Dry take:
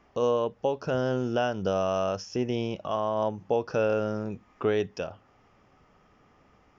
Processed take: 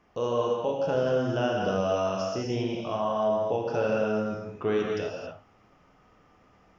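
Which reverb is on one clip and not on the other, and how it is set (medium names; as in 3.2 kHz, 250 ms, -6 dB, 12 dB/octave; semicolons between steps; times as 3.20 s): gated-style reverb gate 300 ms flat, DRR -2.5 dB; trim -3.5 dB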